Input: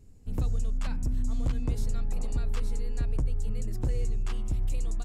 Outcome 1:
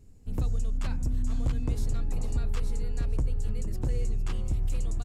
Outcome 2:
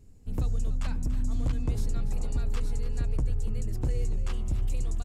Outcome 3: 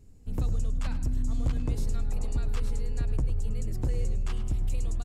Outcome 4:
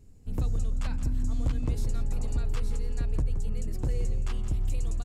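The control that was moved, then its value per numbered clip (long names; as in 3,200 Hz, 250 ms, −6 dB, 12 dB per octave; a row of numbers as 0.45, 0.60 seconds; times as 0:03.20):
echo with shifted repeats, delay time: 458, 287, 104, 170 milliseconds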